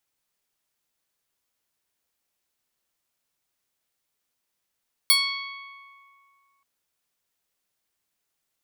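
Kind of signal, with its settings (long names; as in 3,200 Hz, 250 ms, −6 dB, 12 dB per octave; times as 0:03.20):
Karplus-Strong string C#6, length 1.53 s, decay 2.44 s, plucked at 0.15, bright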